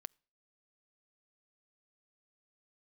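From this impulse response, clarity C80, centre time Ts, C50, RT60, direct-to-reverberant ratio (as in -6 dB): 35.0 dB, 1 ms, 32.0 dB, no single decay rate, 25.5 dB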